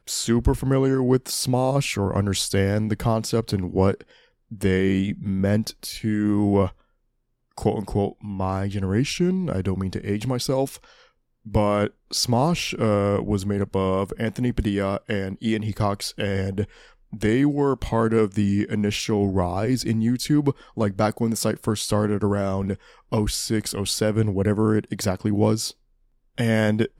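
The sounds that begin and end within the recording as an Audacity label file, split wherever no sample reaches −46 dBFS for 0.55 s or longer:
7.580000	25.720000	sound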